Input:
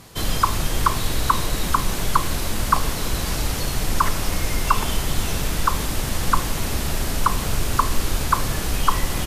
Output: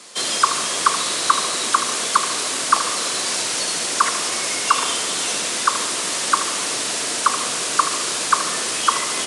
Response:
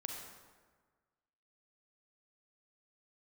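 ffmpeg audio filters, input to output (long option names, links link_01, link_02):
-filter_complex "[0:a]highpass=330,highshelf=frequency=3000:gain=9,bandreject=frequency=770:width=12,afreqshift=48,asplit=2[link_01][link_02];[1:a]atrim=start_sample=2205,adelay=77[link_03];[link_02][link_03]afir=irnorm=-1:irlink=0,volume=-8.5dB[link_04];[link_01][link_04]amix=inputs=2:normalize=0,aresample=22050,aresample=44100,volume=1.5dB"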